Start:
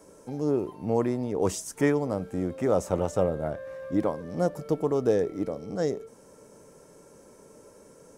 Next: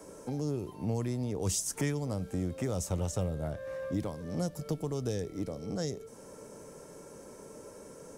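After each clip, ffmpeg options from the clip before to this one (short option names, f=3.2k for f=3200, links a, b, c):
-filter_complex "[0:a]acrossover=split=150|3000[a][b][c];[b]acompressor=threshold=-39dB:ratio=6[d];[a][d][c]amix=inputs=3:normalize=0,volume=3.5dB"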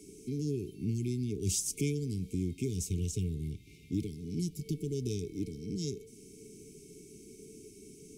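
-af "afftfilt=real='re*(1-between(b*sr/4096,450,2100))':imag='im*(1-between(b*sr/4096,450,2100))':win_size=4096:overlap=0.75"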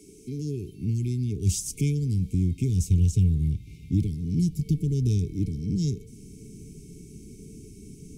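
-af "asubboost=boost=6.5:cutoff=190,volume=1.5dB"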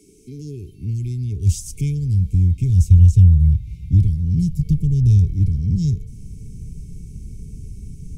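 -af "asubboost=boost=11:cutoff=100,volume=-1dB"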